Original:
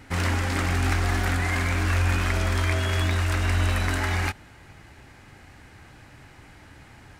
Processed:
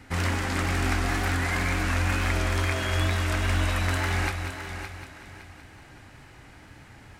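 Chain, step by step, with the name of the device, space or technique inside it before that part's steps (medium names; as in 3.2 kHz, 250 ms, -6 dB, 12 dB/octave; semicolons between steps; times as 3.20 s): multi-head tape echo (multi-head delay 188 ms, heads first and third, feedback 46%, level -9.5 dB; wow and flutter 25 cents); trim -1.5 dB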